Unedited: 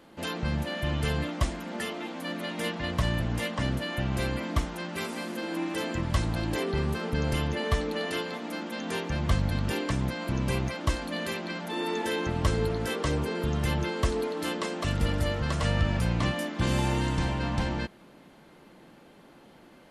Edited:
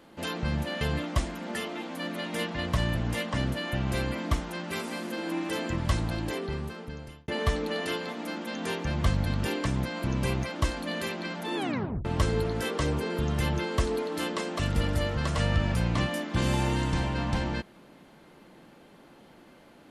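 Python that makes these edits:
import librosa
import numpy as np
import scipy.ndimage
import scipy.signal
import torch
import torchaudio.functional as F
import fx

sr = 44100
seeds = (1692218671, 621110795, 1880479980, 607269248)

y = fx.edit(x, sr, fx.cut(start_s=0.81, length_s=0.25),
    fx.fade_out_span(start_s=6.2, length_s=1.33),
    fx.tape_stop(start_s=11.81, length_s=0.49), tone=tone)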